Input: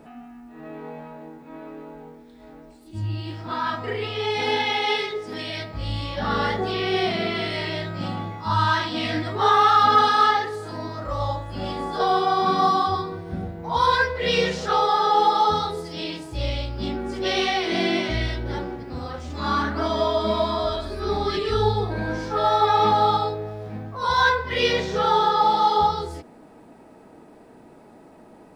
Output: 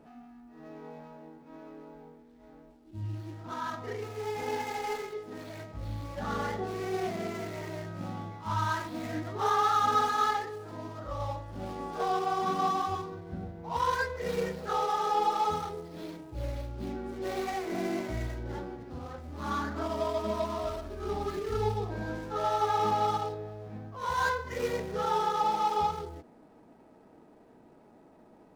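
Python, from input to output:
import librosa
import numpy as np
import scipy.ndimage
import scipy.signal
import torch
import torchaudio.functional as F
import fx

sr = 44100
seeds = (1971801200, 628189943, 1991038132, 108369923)

y = scipy.ndimage.median_filter(x, 15, mode='constant')
y = y * librosa.db_to_amplitude(-8.5)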